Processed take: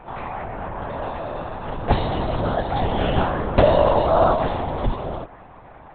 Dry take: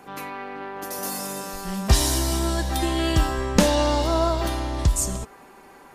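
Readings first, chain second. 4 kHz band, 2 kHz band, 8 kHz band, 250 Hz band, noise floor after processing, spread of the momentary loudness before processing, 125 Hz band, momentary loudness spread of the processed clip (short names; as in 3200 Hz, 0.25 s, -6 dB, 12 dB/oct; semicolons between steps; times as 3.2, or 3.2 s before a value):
-6.5 dB, 0.0 dB, under -40 dB, -1.5 dB, -44 dBFS, 14 LU, 0.0 dB, 14 LU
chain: bell 660 Hz +10.5 dB 1.9 oct; LPC vocoder at 8 kHz whisper; gain -3 dB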